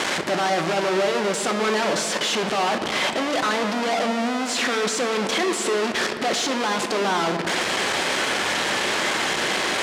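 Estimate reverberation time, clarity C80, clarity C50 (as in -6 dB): 2.6 s, 8.5 dB, 7.5 dB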